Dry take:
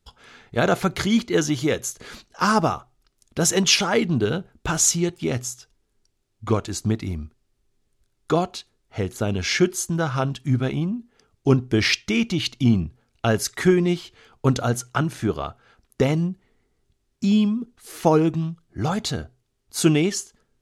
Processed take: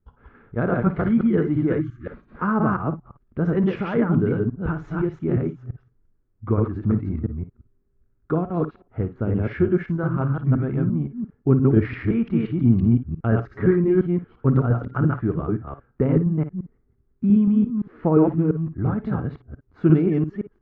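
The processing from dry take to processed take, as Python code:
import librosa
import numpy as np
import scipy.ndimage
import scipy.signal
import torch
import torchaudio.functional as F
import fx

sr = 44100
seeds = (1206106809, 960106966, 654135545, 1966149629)

y = fx.reverse_delay(x, sr, ms=173, wet_db=-1.0)
y = scipy.signal.sosfilt(scipy.signal.butter(4, 1400.0, 'lowpass', fs=sr, output='sos'), y)
y = fx.peak_eq(y, sr, hz=770.0, db=-10.5, octaves=1.4)
y = fx.echo_multitap(y, sr, ms=(51, 58), db=(-14.5, -15.5))
y = fx.spec_erase(y, sr, start_s=1.8, length_s=0.26, low_hz=380.0, high_hz=1100.0)
y = y * 10.0 ** (1.5 / 20.0)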